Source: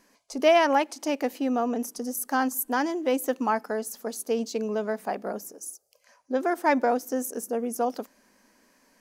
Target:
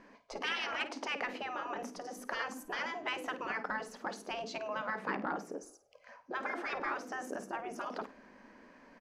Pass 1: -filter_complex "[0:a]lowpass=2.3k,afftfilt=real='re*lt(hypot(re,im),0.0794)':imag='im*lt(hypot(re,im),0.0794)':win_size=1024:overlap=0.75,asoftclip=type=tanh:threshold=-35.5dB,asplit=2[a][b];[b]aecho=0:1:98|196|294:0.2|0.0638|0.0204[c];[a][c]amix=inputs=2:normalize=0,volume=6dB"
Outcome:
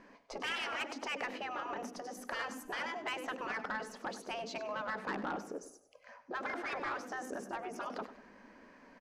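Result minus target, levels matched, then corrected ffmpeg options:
echo 46 ms late; soft clip: distortion +14 dB
-filter_complex "[0:a]lowpass=2.3k,afftfilt=real='re*lt(hypot(re,im),0.0794)':imag='im*lt(hypot(re,im),0.0794)':win_size=1024:overlap=0.75,asoftclip=type=tanh:threshold=-26dB,asplit=2[a][b];[b]aecho=0:1:52|104|156:0.2|0.0638|0.0204[c];[a][c]amix=inputs=2:normalize=0,volume=6dB"

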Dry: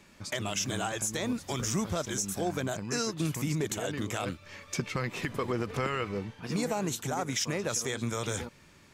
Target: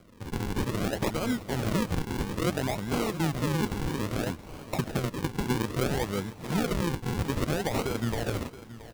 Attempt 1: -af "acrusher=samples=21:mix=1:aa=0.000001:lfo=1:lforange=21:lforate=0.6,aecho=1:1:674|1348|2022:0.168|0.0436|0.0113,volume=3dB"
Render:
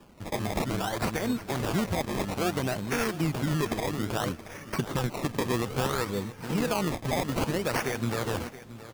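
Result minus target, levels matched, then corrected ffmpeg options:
decimation with a swept rate: distortion -6 dB
-af "acrusher=samples=48:mix=1:aa=0.000001:lfo=1:lforange=48:lforate=0.6,aecho=1:1:674|1348|2022:0.168|0.0436|0.0113,volume=3dB"

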